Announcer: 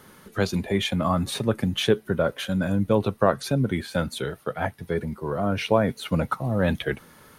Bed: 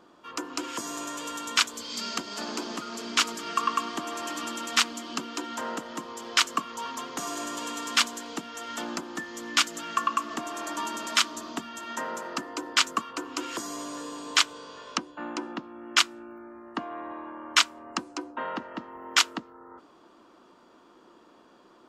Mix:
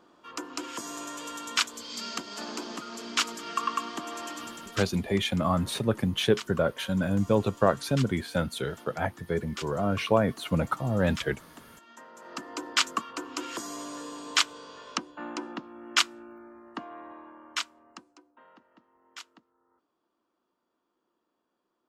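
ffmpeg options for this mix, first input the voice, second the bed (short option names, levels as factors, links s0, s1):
-filter_complex "[0:a]adelay=4400,volume=0.75[s0];[1:a]volume=3.76,afade=t=out:st=4.2:d=0.66:silence=0.211349,afade=t=in:st=12.14:d=0.42:silence=0.188365,afade=t=out:st=16.06:d=2.17:silence=0.0841395[s1];[s0][s1]amix=inputs=2:normalize=0"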